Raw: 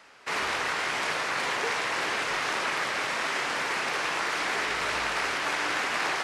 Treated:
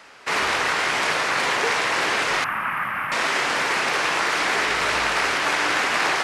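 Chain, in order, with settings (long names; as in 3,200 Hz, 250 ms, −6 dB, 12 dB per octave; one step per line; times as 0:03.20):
0:02.44–0:03.12: drawn EQ curve 210 Hz 0 dB, 420 Hz −19 dB, 1,200 Hz +1 dB, 2,800 Hz −9 dB, 4,000 Hz −30 dB, 7,100 Hz −30 dB, 14,000 Hz +7 dB
level +7 dB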